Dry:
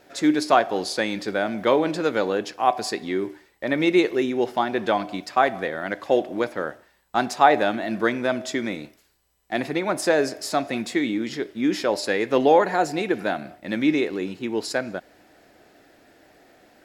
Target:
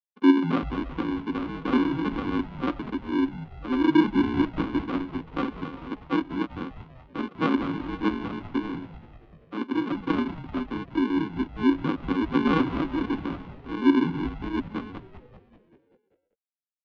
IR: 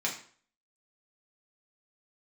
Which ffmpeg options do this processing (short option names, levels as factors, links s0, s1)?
-filter_complex "[0:a]afftfilt=real='re*gte(hypot(re,im),0.0891)':imag='im*gte(hypot(re,im),0.0891)':win_size=1024:overlap=0.75,afreqshift=-27,aresample=16000,acrusher=samples=25:mix=1:aa=0.000001,aresample=44100,highpass=f=250:w=0.5412,highpass=f=250:w=1.3066,equalizer=f=270:t=q:w=4:g=9,equalizer=f=440:t=q:w=4:g=-7,equalizer=f=840:t=q:w=4:g=-8,equalizer=f=1200:t=q:w=4:g=8,equalizer=f=1800:t=q:w=4:g=-8,equalizer=f=2600:t=q:w=4:g=-3,lowpass=f=3000:w=0.5412,lowpass=f=3000:w=1.3066,asplit=8[s0][s1][s2][s3][s4][s5][s6][s7];[s1]adelay=194,afreqshift=-110,volume=0.2[s8];[s2]adelay=388,afreqshift=-220,volume=0.126[s9];[s3]adelay=582,afreqshift=-330,volume=0.0794[s10];[s4]adelay=776,afreqshift=-440,volume=0.0501[s11];[s5]adelay=970,afreqshift=-550,volume=0.0313[s12];[s6]adelay=1164,afreqshift=-660,volume=0.0197[s13];[s7]adelay=1358,afreqshift=-770,volume=0.0124[s14];[s0][s8][s9][s10][s11][s12][s13][s14]amix=inputs=8:normalize=0,volume=0.794"